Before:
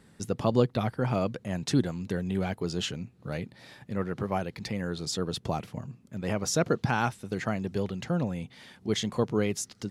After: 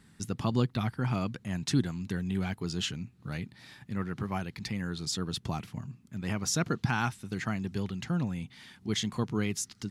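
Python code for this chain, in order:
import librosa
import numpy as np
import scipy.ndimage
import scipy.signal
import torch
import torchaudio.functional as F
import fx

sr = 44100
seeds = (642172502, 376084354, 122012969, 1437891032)

y = fx.peak_eq(x, sr, hz=540.0, db=-12.5, octaves=0.97)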